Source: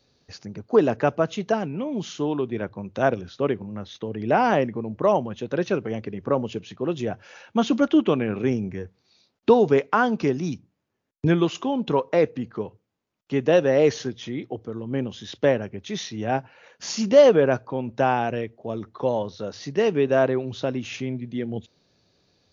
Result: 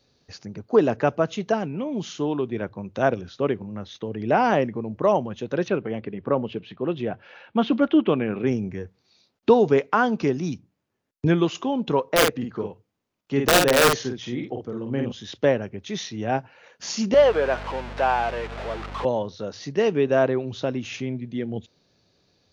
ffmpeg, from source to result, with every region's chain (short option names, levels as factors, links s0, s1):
-filter_complex "[0:a]asettb=1/sr,asplit=3[s0][s1][s2];[s0]atrim=end=5.684[s3];[s1]atrim=start=5.68:end=8.47,asetpts=PTS-STARTPTS,afade=t=in:d=0.004:c=qsin,afade=t=out:st=2.786:d=0.004:c=qsin,lowpass=f=3800:w=0.5412,lowpass=f=3800:w=1.3066,equalizer=f=100:w=5.8:g=-6.5[s4];[s2]atrim=start=8.466[s5];[s3][s4]acrossfade=d=0.004:c1=hsin:c2=qsin[s6];[s6][s5]acrossfade=d=0.004:c1=qsin:c2=hsin,asettb=1/sr,asplit=3[s7][s8][s9];[s7]atrim=end=12.124[s10];[s8]atrim=start=12.12:end=15.12,asetpts=PTS-STARTPTS,afade=t=in:d=0.004:c=qsin,afade=t=out:st=2.996:d=0.004:c=qsin,aeval=exprs='(mod(3.55*val(0)+1,2)-1)/3.55':c=same,asplit=2[s11][s12];[s12]adelay=50,volume=0.631[s13];[s11][s13]amix=inputs=2:normalize=0,atrim=end_sample=132300[s14];[s9]atrim=start=15.116[s15];[s10][s14]acrossfade=d=0.004:c1=hsin:c2=qsin[s16];[s16][s15]acrossfade=d=0.004:c1=qsin:c2=hsin,asettb=1/sr,asplit=3[s17][s18][s19];[s17]atrim=end=17.144[s20];[s18]atrim=start=17.14:end=19.05,asetpts=PTS-STARTPTS,afade=t=in:d=0.004:c=qsin,afade=t=out:st=1.906:d=0.004:c=qsin,aeval=exprs='val(0)+0.5*0.0501*sgn(val(0))':c=same,highpass=580,lowpass=3500,aeval=exprs='val(0)+0.0158*(sin(2*PI*50*n/s)+sin(2*PI*2*50*n/s)/2+sin(2*PI*3*50*n/s)/3+sin(2*PI*4*50*n/s)/4+sin(2*PI*5*50*n/s)/5)':c=same[s21];[s19]atrim=start=19.046[s22];[s20][s21]acrossfade=d=0.004:c1=hsin:c2=qsin[s23];[s23][s22]acrossfade=d=0.004:c1=qsin:c2=hsin"